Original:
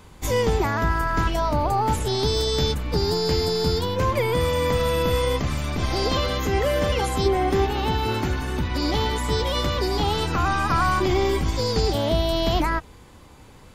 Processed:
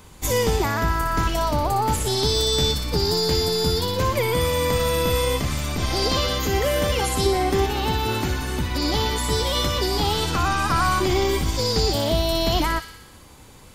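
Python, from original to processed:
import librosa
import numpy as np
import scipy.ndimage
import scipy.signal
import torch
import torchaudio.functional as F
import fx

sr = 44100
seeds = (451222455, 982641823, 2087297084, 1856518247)

y = fx.high_shelf(x, sr, hz=5600.0, db=8.0)
y = fx.echo_wet_highpass(y, sr, ms=60, feedback_pct=66, hz=2800.0, wet_db=-5)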